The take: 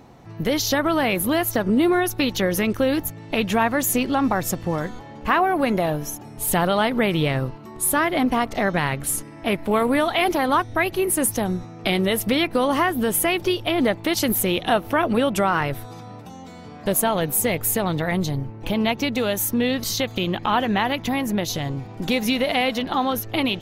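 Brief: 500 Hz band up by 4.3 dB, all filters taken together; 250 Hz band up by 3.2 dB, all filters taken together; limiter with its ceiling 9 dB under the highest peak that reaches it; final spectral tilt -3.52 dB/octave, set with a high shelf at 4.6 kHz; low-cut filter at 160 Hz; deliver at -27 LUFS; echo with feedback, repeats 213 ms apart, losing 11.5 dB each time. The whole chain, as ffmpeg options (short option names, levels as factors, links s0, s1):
-af "highpass=160,equalizer=f=250:t=o:g=3.5,equalizer=f=500:t=o:g=4.5,highshelf=f=4600:g=7.5,alimiter=limit=0.355:level=0:latency=1,aecho=1:1:213|426|639:0.266|0.0718|0.0194,volume=0.422"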